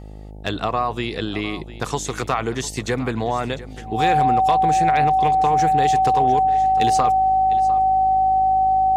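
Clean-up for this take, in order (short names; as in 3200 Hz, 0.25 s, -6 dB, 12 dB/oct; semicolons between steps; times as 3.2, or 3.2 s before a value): clip repair -9 dBFS; de-hum 51.8 Hz, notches 17; notch 760 Hz, Q 30; inverse comb 0.702 s -16.5 dB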